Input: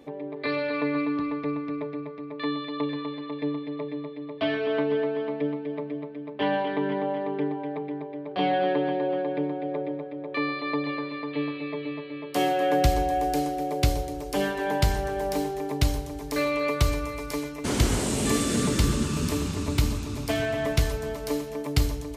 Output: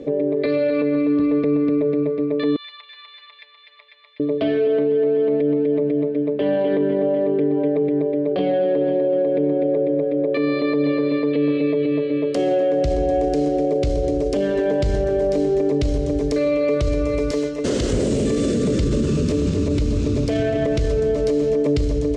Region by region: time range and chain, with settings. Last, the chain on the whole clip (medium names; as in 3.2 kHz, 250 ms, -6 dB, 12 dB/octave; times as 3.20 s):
2.56–4.20 s: band-stop 4.3 kHz, Q 15 + compression 3:1, threshold -31 dBFS + Bessel high-pass 1.9 kHz, order 6
17.31–17.93 s: bass shelf 420 Hz -10 dB + band-stop 2.3 kHz, Q 9.6
whole clip: low-pass 7.6 kHz 24 dB/octave; resonant low shelf 670 Hz +8 dB, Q 3; peak limiter -18.5 dBFS; trim +6 dB